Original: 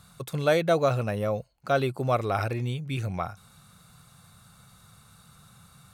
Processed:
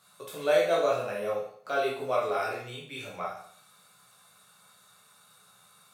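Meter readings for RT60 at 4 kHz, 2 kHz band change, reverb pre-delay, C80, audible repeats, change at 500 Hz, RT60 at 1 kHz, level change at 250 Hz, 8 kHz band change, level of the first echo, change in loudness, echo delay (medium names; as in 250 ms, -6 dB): 0.55 s, -1.5 dB, 12 ms, 8.0 dB, no echo, -1.0 dB, 0.60 s, -10.0 dB, -1.0 dB, no echo, -2.0 dB, no echo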